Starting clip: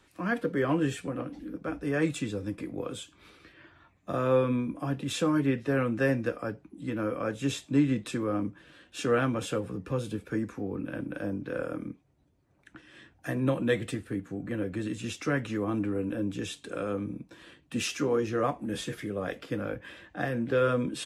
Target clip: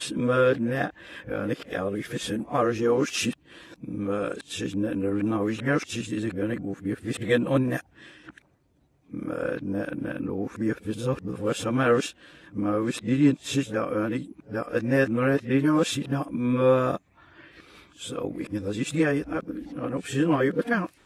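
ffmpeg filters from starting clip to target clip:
ffmpeg -i in.wav -af "areverse,equalizer=frequency=92:width_type=o:width=1.1:gain=-2.5,volume=4.5dB" out.wav

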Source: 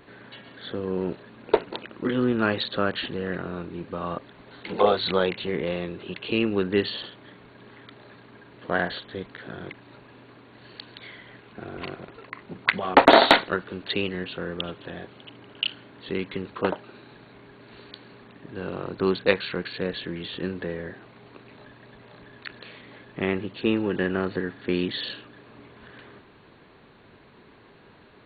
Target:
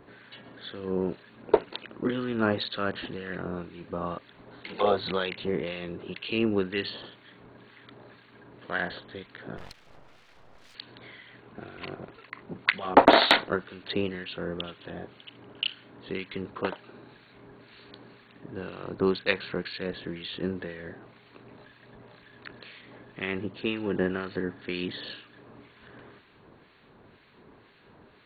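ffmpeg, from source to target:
ffmpeg -i in.wav -filter_complex "[0:a]asettb=1/sr,asplit=3[link_01][link_02][link_03];[link_01]atrim=end=9.574[link_04];[link_02]atrim=start=9.57:end=10.75,asetpts=PTS-STARTPTS,afade=type=in:duration=0.004:curve=qsin,afade=type=out:start_time=1.176:duration=0.004:curve=qsin,aeval=exprs='abs(val(0))':channel_layout=same[link_05];[link_03]atrim=start=10.746[link_06];[link_04][link_05]acrossfade=duration=0.004:curve1=hsin:curve2=qsin[link_07];[link_07][link_06]acrossfade=duration=0.004:curve1=qsin:curve2=hsin,acrossover=split=1400[link_08][link_09];[link_08]aeval=exprs='val(0)*(1-0.7/2+0.7/2*cos(2*PI*2*n/s))':channel_layout=same[link_10];[link_09]aeval=exprs='val(0)*(1-0.7/2-0.7/2*cos(2*PI*2*n/s))':channel_layout=same[link_11];[link_10][link_11]amix=inputs=2:normalize=0" out.wav

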